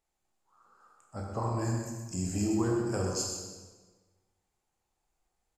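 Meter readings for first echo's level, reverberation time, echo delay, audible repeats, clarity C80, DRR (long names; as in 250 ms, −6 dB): −8.0 dB, 1.4 s, 125 ms, 1, 2.5 dB, −1.5 dB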